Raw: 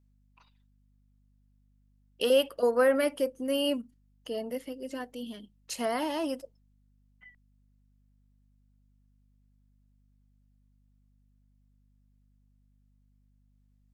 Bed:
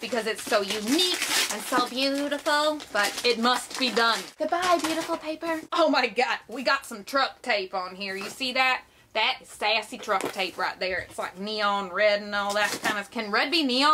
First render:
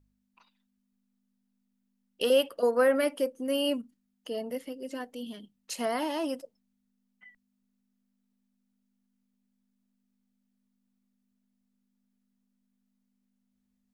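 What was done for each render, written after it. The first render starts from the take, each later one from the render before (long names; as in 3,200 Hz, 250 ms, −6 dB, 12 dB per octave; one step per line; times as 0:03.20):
hum removal 50 Hz, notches 3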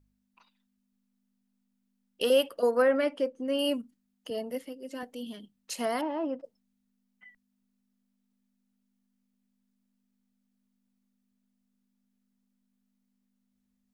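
0:02.82–0:03.59: high-frequency loss of the air 97 metres
0:04.30–0:05.03: multiband upward and downward expander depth 70%
0:06.01–0:06.44: low-pass filter 1,400 Hz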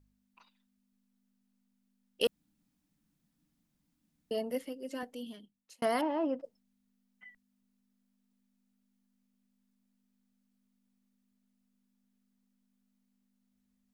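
0:02.27–0:04.31: fill with room tone
0:04.91–0:05.82: fade out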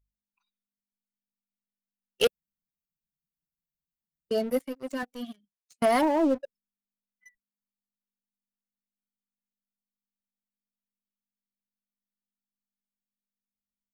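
spectral dynamics exaggerated over time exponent 1.5
leveller curve on the samples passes 3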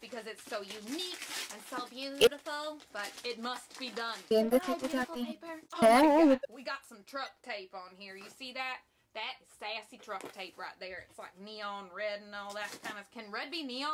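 mix in bed −15.5 dB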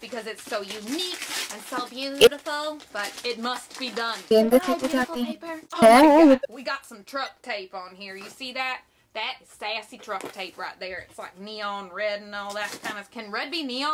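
level +9.5 dB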